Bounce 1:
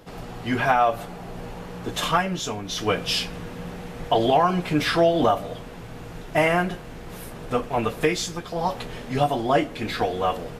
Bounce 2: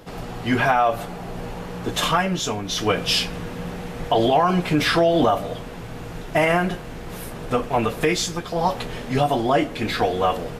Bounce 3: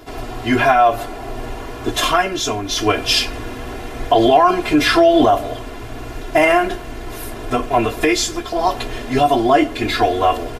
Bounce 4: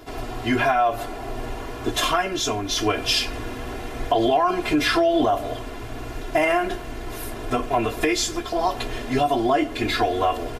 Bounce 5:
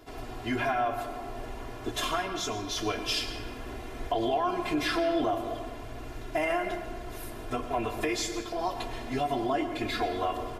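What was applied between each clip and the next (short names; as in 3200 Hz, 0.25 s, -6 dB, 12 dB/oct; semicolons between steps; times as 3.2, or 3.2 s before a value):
limiter -13 dBFS, peak gain reduction 4.5 dB; gain +4 dB
comb 2.9 ms, depth 96%; gain +2 dB
compressor 2:1, threshold -16 dBFS, peak gain reduction 5.5 dB; gain -3 dB
reverb RT60 1.5 s, pre-delay 0.1 s, DRR 8 dB; gain -9 dB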